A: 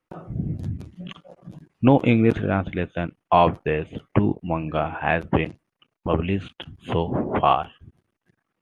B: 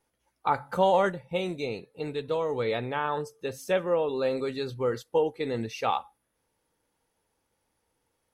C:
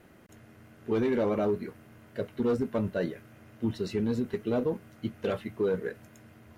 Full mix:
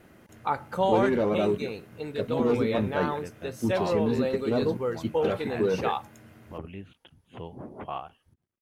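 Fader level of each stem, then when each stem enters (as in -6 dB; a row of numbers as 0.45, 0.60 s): -17.0, -2.0, +2.0 dB; 0.45, 0.00, 0.00 s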